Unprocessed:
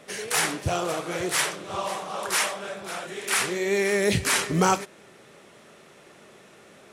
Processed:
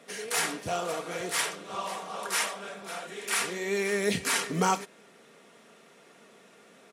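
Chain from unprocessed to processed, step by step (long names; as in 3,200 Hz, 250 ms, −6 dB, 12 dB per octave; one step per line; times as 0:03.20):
high-pass filter 150 Hz 12 dB per octave
comb filter 4.3 ms, depth 41%
level −5 dB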